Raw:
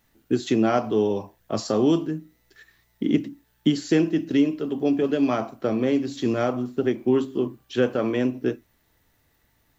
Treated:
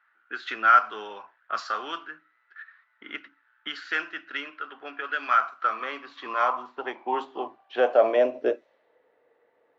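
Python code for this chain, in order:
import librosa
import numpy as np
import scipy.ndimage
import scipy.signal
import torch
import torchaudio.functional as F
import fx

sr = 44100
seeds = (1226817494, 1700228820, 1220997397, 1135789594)

y = fx.filter_sweep_highpass(x, sr, from_hz=1400.0, to_hz=480.0, start_s=5.4, end_s=9.08, q=6.5)
y = fx.low_shelf(y, sr, hz=180.0, db=9.0, at=(0.48, 1.67))
y = fx.env_lowpass(y, sr, base_hz=1900.0, full_db=-22.0)
y = scipy.signal.sosfilt(scipy.signal.butter(2, 3700.0, 'lowpass', fs=sr, output='sos'), y)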